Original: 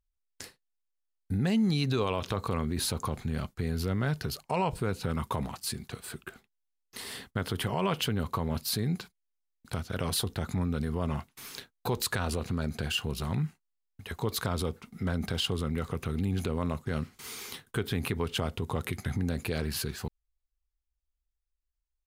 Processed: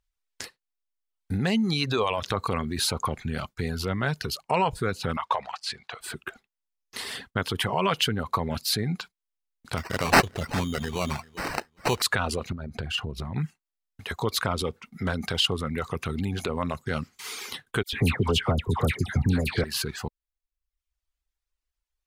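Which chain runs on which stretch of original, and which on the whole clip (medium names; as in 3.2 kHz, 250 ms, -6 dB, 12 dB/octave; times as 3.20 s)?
5.17–6.01 s: low-pass 4.9 kHz + resonant low shelf 440 Hz -13.5 dB, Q 1.5
9.77–12.02 s: peaking EQ 12 kHz +11 dB 2.4 oct + sample-rate reducer 3.4 kHz + feedback delay 396 ms, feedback 21%, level -15 dB
12.52–13.36 s: tilt EQ -2.5 dB/octave + compression 12:1, threshold -30 dBFS
17.83–19.64 s: bass shelf 240 Hz +9.5 dB + phase dispersion lows, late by 99 ms, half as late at 1.4 kHz
whole clip: bass shelf 500 Hz -7.5 dB; reverb removal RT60 0.79 s; treble shelf 9.4 kHz -11 dB; trim +9 dB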